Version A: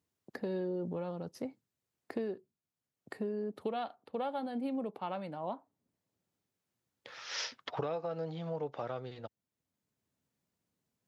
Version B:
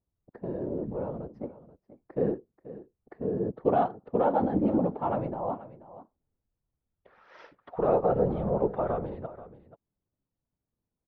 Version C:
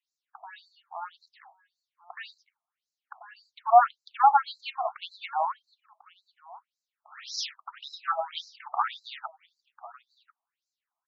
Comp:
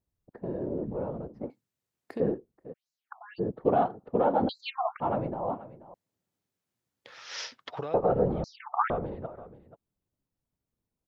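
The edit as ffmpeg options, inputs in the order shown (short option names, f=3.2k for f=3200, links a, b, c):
-filter_complex "[0:a]asplit=2[a][b];[2:a]asplit=3[c][d][e];[1:a]asplit=6[f][g][h][i][j][k];[f]atrim=end=1.502[l];[a]atrim=start=1.498:end=2.202[m];[g]atrim=start=2.198:end=2.74[n];[c]atrim=start=2.72:end=3.4[o];[h]atrim=start=3.38:end=4.492[p];[d]atrim=start=4.488:end=5.002[q];[i]atrim=start=4.998:end=5.942[r];[b]atrim=start=5.938:end=7.942[s];[j]atrim=start=7.938:end=8.442[t];[e]atrim=start=8.438:end=8.902[u];[k]atrim=start=8.898[v];[l][m]acrossfade=d=0.004:c1=hsin:c2=hsin[w];[w][n]acrossfade=d=0.004:c1=hsin:c2=hsin[x];[x][o]acrossfade=d=0.02:c1=tri:c2=tri[y];[y][p]acrossfade=d=0.02:c1=tri:c2=tri[z];[z][q]acrossfade=d=0.004:c1=hsin:c2=hsin[aa];[aa][r]acrossfade=d=0.004:c1=hsin:c2=hsin[ab];[ab][s]acrossfade=d=0.004:c1=hsin:c2=hsin[ac];[ac][t]acrossfade=d=0.004:c1=hsin:c2=hsin[ad];[ad][u]acrossfade=d=0.004:c1=hsin:c2=hsin[ae];[ae][v]acrossfade=d=0.004:c1=hsin:c2=hsin"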